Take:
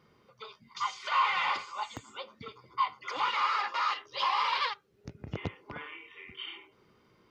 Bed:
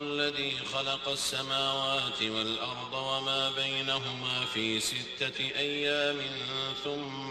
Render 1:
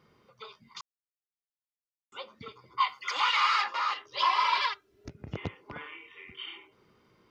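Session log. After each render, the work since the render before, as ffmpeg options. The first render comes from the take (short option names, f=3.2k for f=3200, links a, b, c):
-filter_complex "[0:a]asettb=1/sr,asplit=3[a][b][c];[a]atrim=end=2.804[d];[b]atrim=start=2.8:end=3.64,asetpts=PTS-STARTPTS,afade=t=in:d=0.004:c=qsin,afade=t=out:st=0.836:d=0.004:c=qsin,tiltshelf=f=840:g=-9[e];[c]atrim=start=3.636[f];[d][e]acrossfade=d=0.004:c1=hsin:c2=qsin[g];[g][f]acrossfade=d=0.004:c1=qsin:c2=hsin,asettb=1/sr,asplit=3[h][i][j];[h]atrim=end=4.174[k];[i]atrim=start=4.17:end=5.09,asetpts=PTS-STARTPTS,afade=t=in:d=0.004:c=qsin,afade=t=out:st=0.916:d=0.004:c=qsin,aecho=1:1:3:0.93,atrim=end_sample=40572[l];[j]atrim=start=5.086[m];[k][l]acrossfade=d=0.004:c1=hsin:c2=qsin[n];[n][m]acrossfade=d=0.004:c1=qsin:c2=hsin,asplit=3[o][p][q];[o]atrim=end=0.81,asetpts=PTS-STARTPTS,afade=t=out:st=0.806:d=0.004:c=hsin[r];[p]atrim=start=0.81:end=2.12,asetpts=PTS-STARTPTS,volume=0[s];[q]atrim=start=2.12,asetpts=PTS-STARTPTS,afade=t=in:d=0.004:c=hsin[t];[r][s][t]concat=n=3:v=0:a=1"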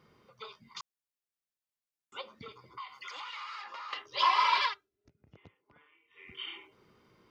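-filter_complex "[0:a]asettb=1/sr,asplit=3[a][b][c];[a]atrim=end=2.214[d];[b]atrim=start=2.21:end=3.93,asetpts=PTS-STARTPTS,afade=t=in:d=0.004:c=qsin,afade=t=out:st=1.716:d=0.004:c=qsin,acompressor=threshold=-41dB:ratio=6:attack=3.2:release=140:knee=1:detection=peak[e];[c]atrim=start=3.926[f];[d][e]acrossfade=d=0.004:c1=hsin:c2=qsin[g];[g][f]acrossfade=d=0.004:c1=qsin:c2=hsin,asplit=3[h][i][j];[h]atrim=end=4.9,asetpts=PTS-STARTPTS,afade=t=out:st=4.62:d=0.28:silence=0.0891251[k];[i]atrim=start=4.9:end=6.08,asetpts=PTS-STARTPTS,volume=-21dB[l];[j]atrim=start=6.08,asetpts=PTS-STARTPTS,afade=t=in:d=0.28:silence=0.0891251[m];[k][l][m]concat=n=3:v=0:a=1"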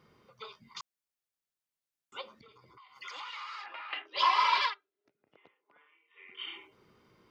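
-filter_complex "[0:a]asplit=3[a][b][c];[a]afade=t=out:st=2.35:d=0.02[d];[b]acompressor=threshold=-56dB:ratio=4:attack=3.2:release=140:knee=1:detection=peak,afade=t=in:st=2.35:d=0.02,afade=t=out:st=2.95:d=0.02[e];[c]afade=t=in:st=2.95:d=0.02[f];[d][e][f]amix=inputs=3:normalize=0,asettb=1/sr,asplit=3[g][h][i];[g]atrim=end=3.664[j];[h]atrim=start=3.66:end=4.16,asetpts=PTS-STARTPTS,afade=t=in:d=0.004:c=qsin,afade=t=out:st=0.496:d=0.004:c=qsin,highpass=f=280:w=0.5412,highpass=f=280:w=1.3066,equalizer=f=310:t=q:w=4:g=7,equalizer=f=470:t=q:w=4:g=-7,equalizer=f=710:t=q:w=4:g=8,equalizer=f=1.1k:t=q:w=4:g=-8,equalizer=f=1.6k:t=q:w=4:g=5,equalizer=f=2.5k:t=q:w=4:g=8,lowpass=f=3.4k:w=0.5412,lowpass=f=3.4k:w=1.3066[k];[i]atrim=start=4.156[l];[j][k]acrossfade=d=0.004:c1=hsin:c2=qsin[m];[m][l]acrossfade=d=0.004:c1=qsin:c2=hsin,asettb=1/sr,asplit=3[n][o][p];[n]atrim=end=4.704[q];[o]atrim=start=4.7:end=6.41,asetpts=PTS-STARTPTS,afade=t=in:d=0.004:c=qsin,afade=t=out:st=1.706:d=0.004:c=qsin,highpass=420,lowpass=3.6k[r];[p]atrim=start=6.406[s];[q][r]acrossfade=d=0.004:c1=hsin:c2=qsin[t];[t][s]acrossfade=d=0.004:c1=qsin:c2=hsin"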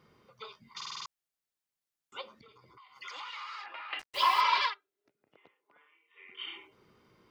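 -filter_complex "[0:a]asettb=1/sr,asplit=3[a][b][c];[a]atrim=end=3.994[d];[b]atrim=start=3.99:end=4.41,asetpts=PTS-STARTPTS,afade=t=in:d=0.004:c=qsin,afade=t=out:st=0.416:d=0.004:c=qsin,acrusher=bits=6:mix=0:aa=0.5[e];[c]atrim=start=4.406[f];[d][e]acrossfade=d=0.004:c1=hsin:c2=qsin[g];[g][f]acrossfade=d=0.004:c1=qsin:c2=hsin,asplit=7[h][i][j][k][l][m][n];[h]atrim=end=0.812[o];[i]atrim=start=0.758:end=0.812[p];[j]atrim=start=0.758:end=0.812[q];[k]atrim=start=0.758:end=0.812[r];[l]atrim=start=0.758:end=0.812[s];[m]atrim=start=0.758:end=0.812[t];[n]atrim=start=1.058[u];[o][p]acrossfade=d=0.004:c1=hsin:c2=hsin[v];[v][q]acrossfade=d=0.004:c1=hsin:c2=hsin[w];[w][r]acrossfade=d=0.004:c1=hsin:c2=hsin[x];[x][s]acrossfade=d=0.004:c1=hsin:c2=hsin[y];[y][t]acrossfade=d=0.004:c1=hsin:c2=hsin[z];[z][u]acrossfade=d=0.004:c1=hsin:c2=hsin"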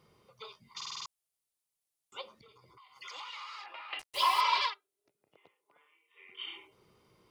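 -af "equalizer=f=250:t=o:w=0.67:g=-6,equalizer=f=1.6k:t=o:w=0.67:g=-7,equalizer=f=10k:t=o:w=0.67:g=8"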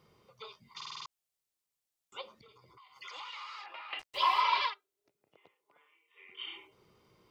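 -filter_complex "[0:a]acrossover=split=4600[a][b];[b]acompressor=threshold=-58dB:ratio=4:attack=1:release=60[c];[a][c]amix=inputs=2:normalize=0,equalizer=f=9.9k:t=o:w=0.2:g=-9"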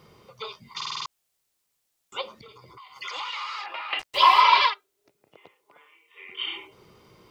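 -af "volume=11.5dB"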